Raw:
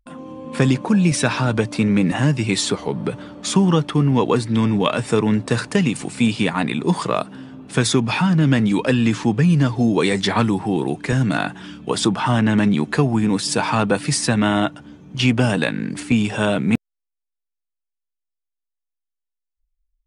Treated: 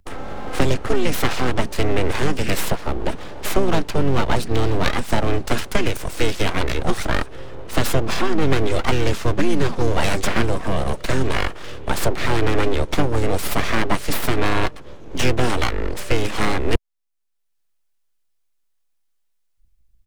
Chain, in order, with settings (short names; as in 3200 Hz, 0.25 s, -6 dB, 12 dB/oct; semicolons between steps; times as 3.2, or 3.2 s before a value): full-wave rectifier; harmoniser -7 st -6 dB; three-band squash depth 40%